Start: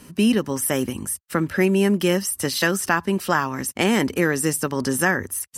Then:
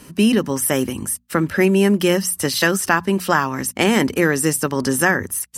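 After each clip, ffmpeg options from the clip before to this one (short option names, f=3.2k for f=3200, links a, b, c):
-af "bandreject=f=60:t=h:w=6,bandreject=f=120:t=h:w=6,bandreject=f=180:t=h:w=6,bandreject=f=240:t=h:w=6,volume=3.5dB"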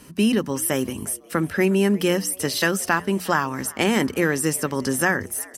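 -filter_complex "[0:a]asplit=4[a][b][c][d];[b]adelay=359,afreqshift=92,volume=-23dB[e];[c]adelay=718,afreqshift=184,volume=-29.4dB[f];[d]adelay=1077,afreqshift=276,volume=-35.8dB[g];[a][e][f][g]amix=inputs=4:normalize=0,volume=-4dB"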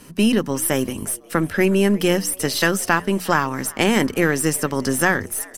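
-af "aeval=exprs='if(lt(val(0),0),0.708*val(0),val(0))':c=same,volume=3.5dB"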